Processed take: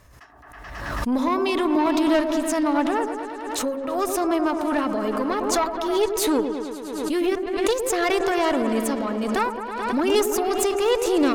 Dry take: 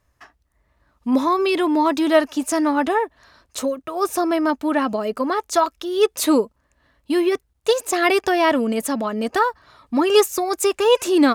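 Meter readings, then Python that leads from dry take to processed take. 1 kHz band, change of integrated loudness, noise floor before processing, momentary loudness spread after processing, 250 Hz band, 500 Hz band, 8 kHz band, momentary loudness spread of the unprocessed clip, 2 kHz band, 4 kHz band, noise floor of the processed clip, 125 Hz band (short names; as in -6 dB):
-3.0 dB, -3.0 dB, -67 dBFS, 8 LU, -2.0 dB, -3.0 dB, -1.0 dB, 8 LU, -3.5 dB, -3.5 dB, -42 dBFS, n/a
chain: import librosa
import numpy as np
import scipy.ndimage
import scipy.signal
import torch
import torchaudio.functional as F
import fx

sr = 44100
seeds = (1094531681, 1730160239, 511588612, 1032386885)

y = fx.tube_stage(x, sr, drive_db=13.0, bias=0.5)
y = fx.echo_opening(y, sr, ms=108, hz=750, octaves=1, feedback_pct=70, wet_db=-6)
y = fx.pre_swell(y, sr, db_per_s=39.0)
y = y * librosa.db_to_amplitude(-2.0)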